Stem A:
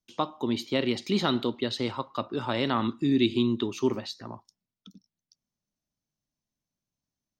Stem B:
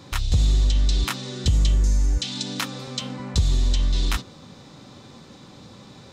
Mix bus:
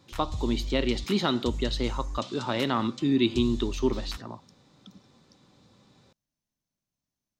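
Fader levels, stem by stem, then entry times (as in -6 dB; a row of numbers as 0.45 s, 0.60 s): 0.0 dB, -14.5 dB; 0.00 s, 0.00 s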